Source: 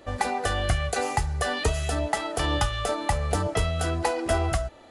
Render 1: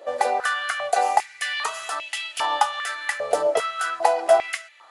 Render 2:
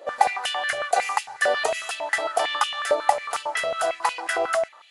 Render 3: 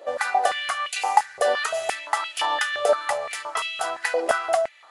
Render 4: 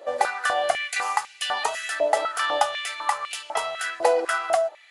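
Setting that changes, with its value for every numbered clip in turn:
stepped high-pass, rate: 2.5, 11, 5.8, 4 Hz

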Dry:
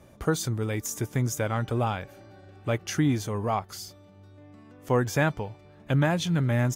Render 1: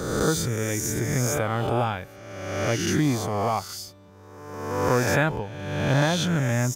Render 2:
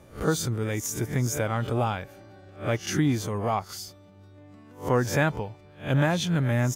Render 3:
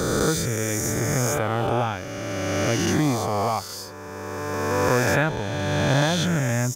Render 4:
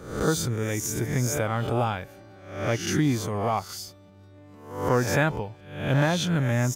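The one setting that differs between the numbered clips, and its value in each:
spectral swells, rising 60 dB in: 1.42, 0.31, 3.03, 0.66 s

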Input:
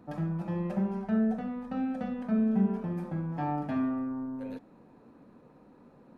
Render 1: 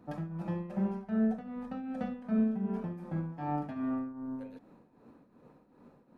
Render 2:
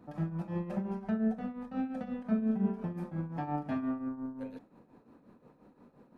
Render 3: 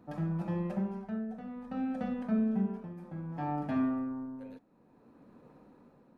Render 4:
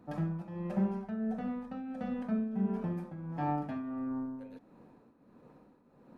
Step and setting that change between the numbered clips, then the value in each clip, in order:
tremolo, rate: 2.6, 5.7, 0.59, 1.5 Hz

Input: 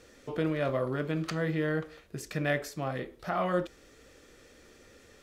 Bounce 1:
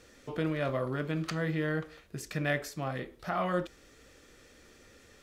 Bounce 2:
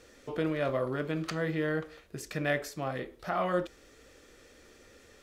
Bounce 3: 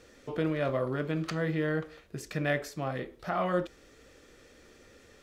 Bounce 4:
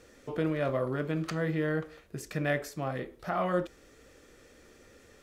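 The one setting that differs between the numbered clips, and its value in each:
bell, frequency: 460, 150, 12000, 3900 Hz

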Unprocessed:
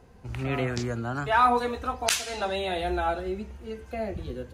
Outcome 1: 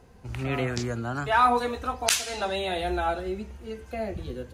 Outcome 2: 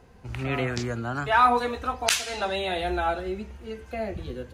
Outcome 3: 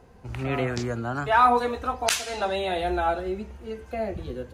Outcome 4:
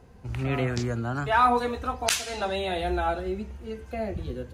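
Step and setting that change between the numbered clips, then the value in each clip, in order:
bell, frequency: 11000, 2400, 730, 99 Hz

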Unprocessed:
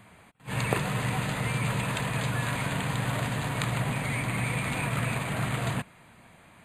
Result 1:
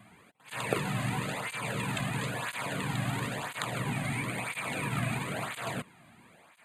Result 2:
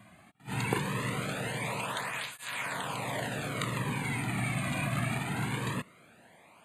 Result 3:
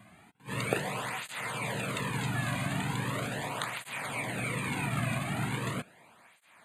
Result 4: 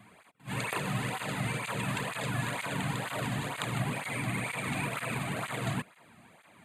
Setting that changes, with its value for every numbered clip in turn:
tape flanging out of phase, nulls at: 0.99, 0.21, 0.39, 2.1 Hz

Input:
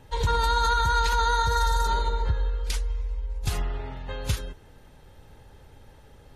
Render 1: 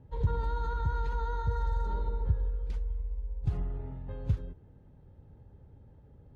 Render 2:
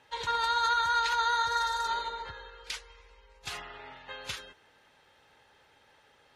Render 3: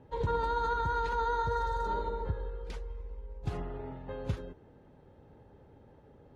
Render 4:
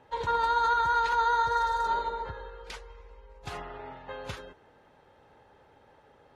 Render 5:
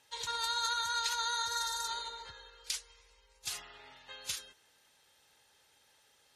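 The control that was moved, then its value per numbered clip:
band-pass, frequency: 120, 2300, 300, 880, 6600 Hz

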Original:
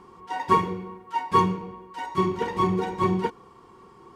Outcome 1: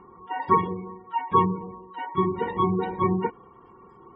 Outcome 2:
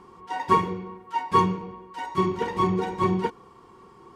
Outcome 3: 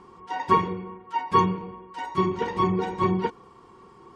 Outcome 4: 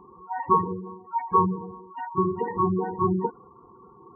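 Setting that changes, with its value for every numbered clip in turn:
spectral gate, under each frame's peak: -25, -60, -45, -15 dB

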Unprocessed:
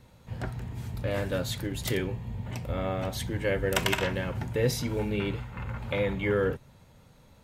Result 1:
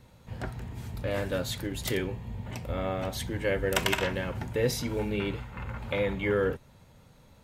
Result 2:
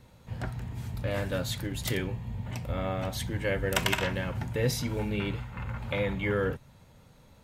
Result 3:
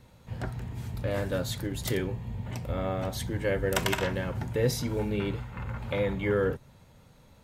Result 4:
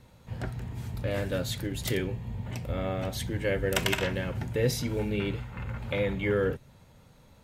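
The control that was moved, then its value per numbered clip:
dynamic EQ, frequency: 130, 400, 2600, 1000 Hz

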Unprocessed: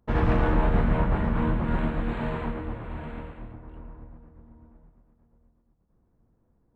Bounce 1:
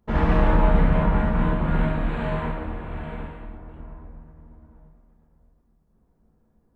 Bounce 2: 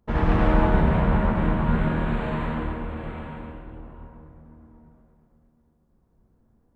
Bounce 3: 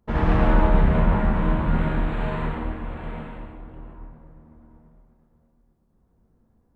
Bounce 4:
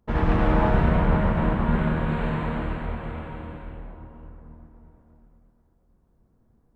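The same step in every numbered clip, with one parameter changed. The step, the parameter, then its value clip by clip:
non-linear reverb, gate: 90, 340, 210, 540 ms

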